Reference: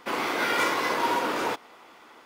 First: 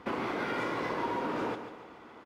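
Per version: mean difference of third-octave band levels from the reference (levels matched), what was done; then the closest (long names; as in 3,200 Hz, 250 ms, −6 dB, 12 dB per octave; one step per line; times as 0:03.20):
7.5 dB: high-pass filter 62 Hz
RIAA equalisation playback
downward compressor, threshold −29 dBFS, peak gain reduction 9 dB
on a send: repeating echo 142 ms, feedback 42%, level −9.5 dB
on the sum: level −1.5 dB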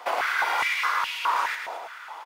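10.0 dB: downward compressor 4 to 1, threshold −33 dBFS, peak gain reduction 11 dB
surface crackle 270 per second −61 dBFS
repeating echo 109 ms, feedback 55%, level −5.5 dB
high-pass on a step sequencer 4.8 Hz 690–2,700 Hz
level +4 dB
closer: first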